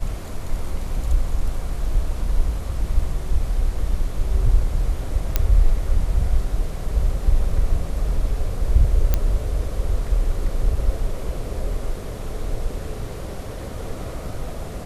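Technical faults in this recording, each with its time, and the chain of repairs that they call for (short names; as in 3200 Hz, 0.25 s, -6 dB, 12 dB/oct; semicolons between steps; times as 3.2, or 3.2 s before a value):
5.36 pop -4 dBFS
9.14 pop -5 dBFS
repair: de-click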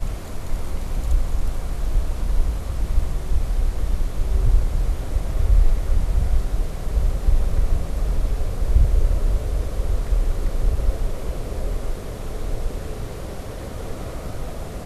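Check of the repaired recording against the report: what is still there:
none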